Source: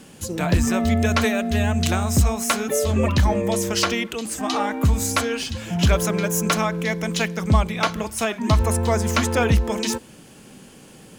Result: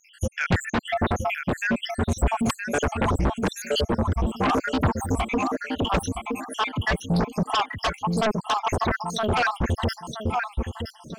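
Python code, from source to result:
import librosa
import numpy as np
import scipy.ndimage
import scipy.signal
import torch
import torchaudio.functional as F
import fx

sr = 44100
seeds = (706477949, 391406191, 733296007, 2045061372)

p1 = fx.spec_dropout(x, sr, seeds[0], share_pct=85)
p2 = fx.lowpass(p1, sr, hz=1400.0, slope=6)
p3 = fx.peak_eq(p2, sr, hz=470.0, db=-3.5, octaves=0.58)
p4 = fx.echo_feedback(p3, sr, ms=969, feedback_pct=27, wet_db=-8)
p5 = fx.fold_sine(p4, sr, drive_db=19, ceiling_db=-8.5)
p6 = p4 + (p5 * 10.0 ** (-7.5 / 20.0))
p7 = fx.doppler_dist(p6, sr, depth_ms=0.11)
y = p7 * 10.0 ** (-4.0 / 20.0)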